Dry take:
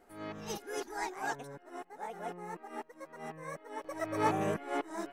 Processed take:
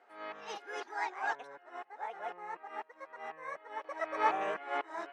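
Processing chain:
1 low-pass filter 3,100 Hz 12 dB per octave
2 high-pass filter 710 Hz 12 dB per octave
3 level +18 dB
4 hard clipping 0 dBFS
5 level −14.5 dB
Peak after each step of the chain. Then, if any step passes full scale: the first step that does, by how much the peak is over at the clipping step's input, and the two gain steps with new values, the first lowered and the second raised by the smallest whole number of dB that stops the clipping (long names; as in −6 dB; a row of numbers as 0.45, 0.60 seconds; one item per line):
−16.5, −20.0, −2.0, −2.0, −16.5 dBFS
no step passes full scale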